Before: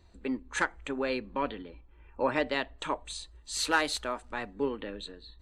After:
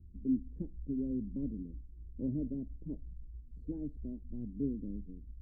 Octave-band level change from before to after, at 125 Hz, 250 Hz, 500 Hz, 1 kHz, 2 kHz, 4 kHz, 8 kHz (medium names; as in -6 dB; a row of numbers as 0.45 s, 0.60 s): +6.5 dB, +1.0 dB, -16.0 dB, under -40 dB, under -40 dB, under -40 dB, under -40 dB